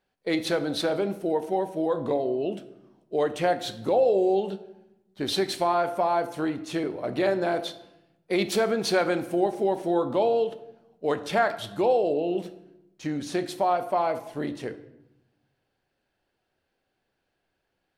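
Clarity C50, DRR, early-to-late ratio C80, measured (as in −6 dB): 13.0 dB, 10.0 dB, 16.0 dB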